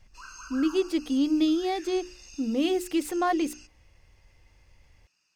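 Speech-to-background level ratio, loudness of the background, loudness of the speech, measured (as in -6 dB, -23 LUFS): 19.0 dB, -46.0 LUFS, -27.0 LUFS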